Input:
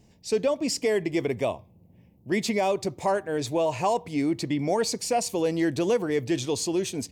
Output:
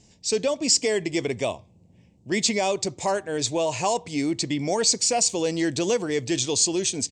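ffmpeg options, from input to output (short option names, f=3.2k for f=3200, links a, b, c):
-af "firequalizer=gain_entry='entry(1200,0);entry(3400,7);entry(7700,13);entry(12000,-18)':delay=0.05:min_phase=1"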